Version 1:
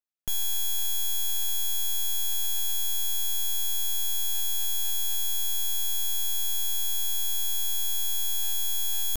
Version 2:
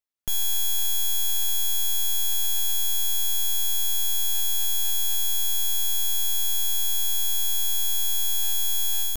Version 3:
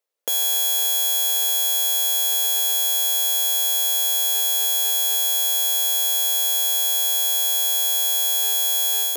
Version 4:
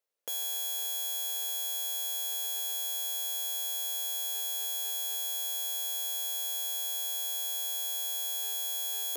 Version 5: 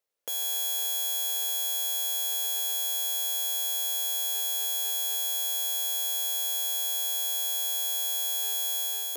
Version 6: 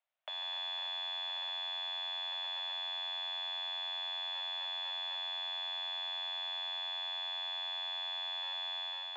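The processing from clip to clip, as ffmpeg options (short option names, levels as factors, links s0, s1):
-af "dynaudnorm=f=170:g=3:m=1.5"
-af "highpass=f=490:t=q:w=5.9,volume=2"
-af "alimiter=limit=0.126:level=0:latency=1,volume=0.596"
-af "dynaudnorm=f=100:g=7:m=1.41,volume=1.19"
-af "highpass=f=540:t=q:w=0.5412,highpass=f=540:t=q:w=1.307,lowpass=f=3400:t=q:w=0.5176,lowpass=f=3400:t=q:w=0.7071,lowpass=f=3400:t=q:w=1.932,afreqshift=110"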